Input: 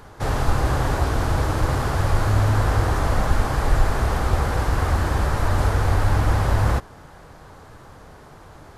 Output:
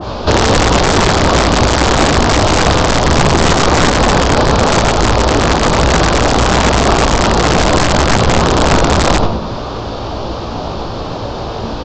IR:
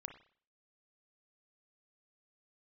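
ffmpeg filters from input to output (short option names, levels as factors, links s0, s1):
-filter_complex "[0:a]aeval=exprs='0.596*(cos(1*acos(clip(val(0)/0.596,-1,1)))-cos(1*PI/2))+0.266*(cos(4*acos(clip(val(0)/0.596,-1,1)))-cos(4*PI/2))+0.266*(cos(5*acos(clip(val(0)/0.596,-1,1)))-cos(5*PI/2))':c=same,acontrast=63,lowpass=f=6200:t=q:w=2.1,equalizer=f=2800:t=o:w=0.48:g=-6,asetrate=32667,aresample=44100,highpass=62,asplit=2[s0][s1];[s1]asplit=4[s2][s3][s4][s5];[s2]adelay=96,afreqshift=-74,volume=0.562[s6];[s3]adelay=192,afreqshift=-148,volume=0.202[s7];[s4]adelay=288,afreqshift=-222,volume=0.0733[s8];[s5]adelay=384,afreqshift=-296,volume=0.0263[s9];[s6][s7][s8][s9]amix=inputs=4:normalize=0[s10];[s0][s10]amix=inputs=2:normalize=0[s11];[1:a]atrim=start_sample=2205,afade=t=out:st=0.14:d=0.01,atrim=end_sample=6615,asetrate=74970,aresample=44100[s12];[s11][s12]afir=irnorm=-1:irlink=0,aresample=16000,aeval=exprs='(mod(3.98*val(0)+1,2)-1)/3.98':c=same,aresample=44100,alimiter=level_in=5.96:limit=0.891:release=50:level=0:latency=1,adynamicequalizer=threshold=0.0562:dfrequency=1600:dqfactor=0.7:tfrequency=1600:tqfactor=0.7:attack=5:release=100:ratio=0.375:range=2:mode=cutabove:tftype=highshelf"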